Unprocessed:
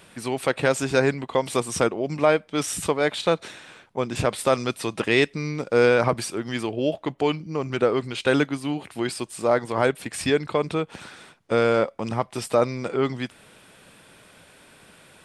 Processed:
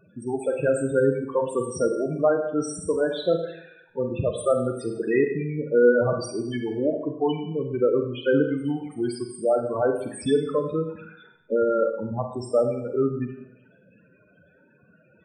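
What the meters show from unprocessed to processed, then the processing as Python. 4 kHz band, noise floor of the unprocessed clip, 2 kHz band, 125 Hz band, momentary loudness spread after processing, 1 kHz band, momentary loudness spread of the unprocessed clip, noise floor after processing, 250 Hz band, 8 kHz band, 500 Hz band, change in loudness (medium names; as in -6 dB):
-10.0 dB, -54 dBFS, -7.0 dB, -1.5 dB, 8 LU, -5.5 dB, 8 LU, -59 dBFS, 0.0 dB, -7.0 dB, +0.5 dB, -1.0 dB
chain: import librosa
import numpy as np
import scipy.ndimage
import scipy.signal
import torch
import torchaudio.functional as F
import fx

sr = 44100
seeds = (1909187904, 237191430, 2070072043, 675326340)

y = fx.spec_topn(x, sr, count=8)
y = fx.rev_schroeder(y, sr, rt60_s=0.76, comb_ms=33, drr_db=4.5)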